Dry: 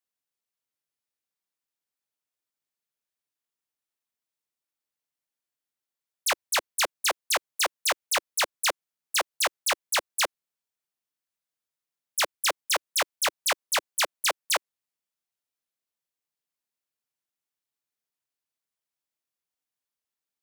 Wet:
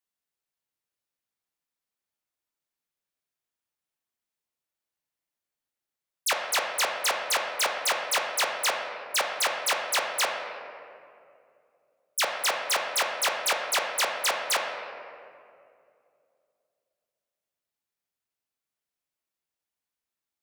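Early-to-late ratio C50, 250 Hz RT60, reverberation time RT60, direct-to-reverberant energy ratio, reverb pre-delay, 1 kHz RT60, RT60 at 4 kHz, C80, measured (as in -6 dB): 3.5 dB, 2.9 s, 2.5 s, 1.0 dB, 9 ms, 2.2 s, 1.3 s, 5.0 dB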